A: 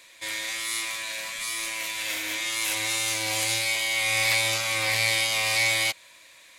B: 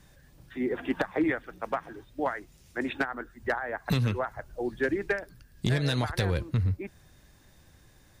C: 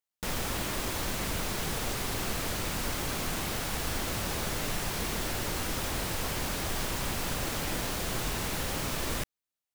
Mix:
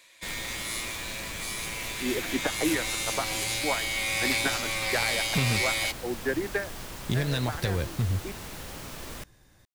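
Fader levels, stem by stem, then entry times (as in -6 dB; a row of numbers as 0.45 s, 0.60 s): -4.5 dB, -1.0 dB, -7.5 dB; 0.00 s, 1.45 s, 0.00 s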